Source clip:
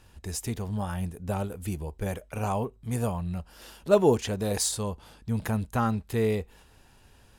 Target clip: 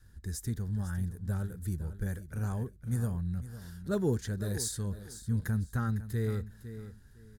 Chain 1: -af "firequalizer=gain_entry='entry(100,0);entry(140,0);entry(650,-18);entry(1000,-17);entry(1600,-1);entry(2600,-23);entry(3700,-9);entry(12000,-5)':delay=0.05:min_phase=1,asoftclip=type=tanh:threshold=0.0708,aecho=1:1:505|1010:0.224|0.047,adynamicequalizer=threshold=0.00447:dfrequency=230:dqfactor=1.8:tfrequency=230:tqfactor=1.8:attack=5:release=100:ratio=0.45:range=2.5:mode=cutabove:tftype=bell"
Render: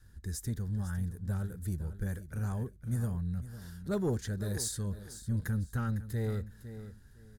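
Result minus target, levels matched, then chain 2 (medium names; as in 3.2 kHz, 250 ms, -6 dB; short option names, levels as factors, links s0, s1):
saturation: distortion +19 dB
-af "firequalizer=gain_entry='entry(100,0);entry(140,0);entry(650,-18);entry(1000,-17);entry(1600,-1);entry(2600,-23);entry(3700,-9);entry(12000,-5)':delay=0.05:min_phase=1,asoftclip=type=tanh:threshold=0.266,aecho=1:1:505|1010:0.224|0.047,adynamicequalizer=threshold=0.00447:dfrequency=230:dqfactor=1.8:tfrequency=230:tqfactor=1.8:attack=5:release=100:ratio=0.45:range=2.5:mode=cutabove:tftype=bell"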